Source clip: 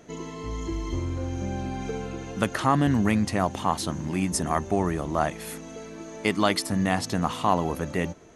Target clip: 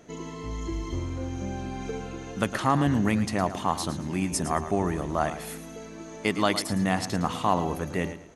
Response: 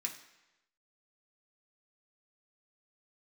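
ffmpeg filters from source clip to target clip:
-af "aecho=1:1:110|220|330:0.251|0.0678|0.0183,volume=-1.5dB"

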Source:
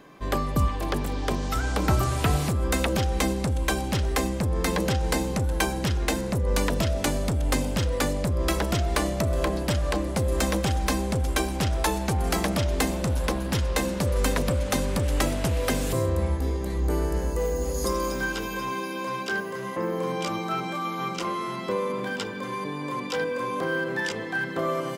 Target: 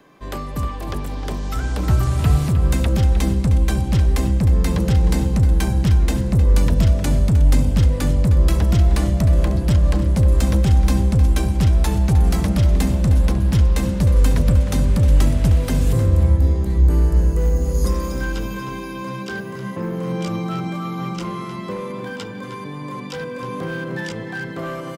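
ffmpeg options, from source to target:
ffmpeg -i in.wav -filter_complex "[0:a]asettb=1/sr,asplit=3[link_01][link_02][link_03];[link_01]atrim=end=21.444[link_04];[link_02]atrim=start=21.44:end=23.43,asetpts=PTS-STARTPTS,afade=type=in:duration=0.004:curve=qsin,afade=type=out:start_time=1.986:duration=0.004:curve=qsin,lowshelf=frequency=200:gain=-7[link_05];[link_03]atrim=start=23.426[link_06];[link_04][link_05]acrossfade=duration=0.004:curve1=hsin:curve2=qsin[link_07];[link_07][link_06]acrossfade=duration=0.004:curve1=qsin:curve2=hsin,acrossover=split=200|2900[link_08][link_09][link_10];[link_08]dynaudnorm=framelen=750:gausssize=5:maxgain=13.5dB[link_11];[link_09]volume=24.5dB,asoftclip=hard,volume=-24.5dB[link_12];[link_11][link_12][link_10]amix=inputs=3:normalize=0,asplit=2[link_13][link_14];[link_14]adelay=309,volume=-9dB,highshelf=frequency=4000:gain=-6.95[link_15];[link_13][link_15]amix=inputs=2:normalize=0,volume=-1.5dB" out.wav

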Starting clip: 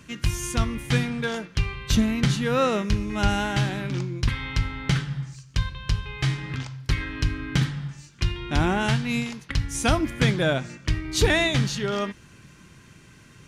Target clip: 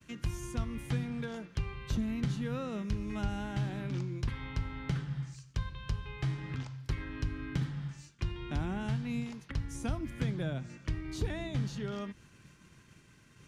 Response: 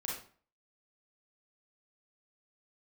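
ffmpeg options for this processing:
-filter_complex "[0:a]acrossover=split=240|1200[link_01][link_02][link_03];[link_01]acompressor=threshold=-23dB:ratio=4[link_04];[link_02]acompressor=threshold=-36dB:ratio=4[link_05];[link_03]acompressor=threshold=-43dB:ratio=4[link_06];[link_04][link_05][link_06]amix=inputs=3:normalize=0,agate=range=-33dB:threshold=-46dB:ratio=3:detection=peak,volume=-6.5dB"

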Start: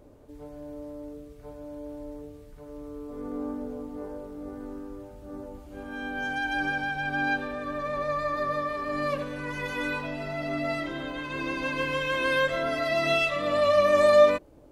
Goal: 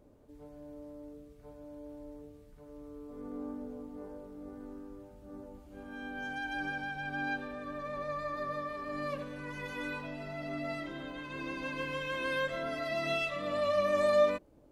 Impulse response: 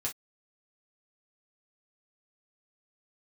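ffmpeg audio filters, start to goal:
-af "equalizer=frequency=200:width_type=o:width=0.65:gain=4.5,volume=-8.5dB"

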